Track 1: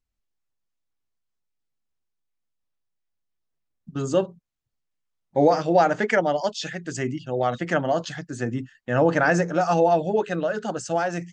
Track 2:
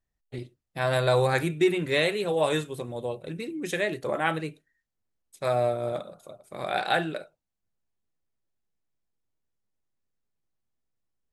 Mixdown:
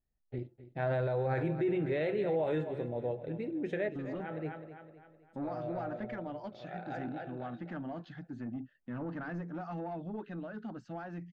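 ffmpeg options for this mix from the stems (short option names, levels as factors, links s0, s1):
-filter_complex "[0:a]equalizer=f=250:t=o:w=1:g=10,equalizer=f=500:t=o:w=1:g=-10,equalizer=f=4000:t=o:w=1:g=11,acompressor=threshold=0.0398:ratio=1.5,asoftclip=type=tanh:threshold=0.0841,volume=0.266,asplit=2[s0][s1];[1:a]equalizer=f=1100:t=o:w=0.29:g=-14,bandreject=f=171.1:t=h:w=4,bandreject=f=342.2:t=h:w=4,bandreject=f=513.3:t=h:w=4,bandreject=f=684.4:t=h:w=4,bandreject=f=855.5:t=h:w=4,bandreject=f=1026.6:t=h:w=4,bandreject=f=1197.7:t=h:w=4,bandreject=f=1368.8:t=h:w=4,bandreject=f=1539.9:t=h:w=4,bandreject=f=1711:t=h:w=4,volume=0.794,asplit=2[s2][s3];[s3]volume=0.178[s4];[s1]apad=whole_len=499550[s5];[s2][s5]sidechaincompress=threshold=0.00178:ratio=4:attack=7.3:release=226[s6];[s4]aecho=0:1:257|514|771|1028|1285|1542:1|0.45|0.202|0.0911|0.041|0.0185[s7];[s0][s6][s7]amix=inputs=3:normalize=0,lowpass=1400,alimiter=level_in=1.06:limit=0.0631:level=0:latency=1:release=25,volume=0.944"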